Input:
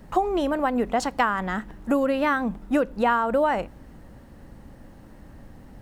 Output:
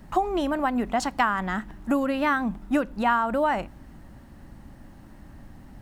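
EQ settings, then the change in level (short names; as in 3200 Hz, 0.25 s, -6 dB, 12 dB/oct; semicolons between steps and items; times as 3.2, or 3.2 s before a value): bell 480 Hz -10.5 dB 0.35 oct; 0.0 dB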